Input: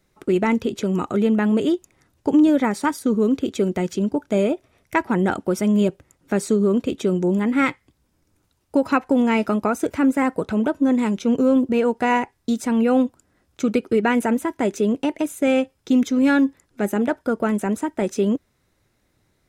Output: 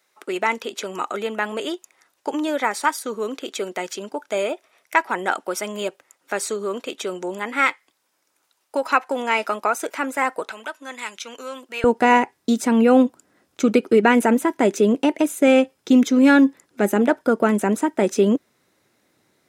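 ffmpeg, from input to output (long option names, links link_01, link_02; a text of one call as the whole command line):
ffmpeg -i in.wav -af "asetnsamples=nb_out_samples=441:pad=0,asendcmd='10.51 highpass f 1500;11.84 highpass f 210',highpass=720,volume=4.5dB" out.wav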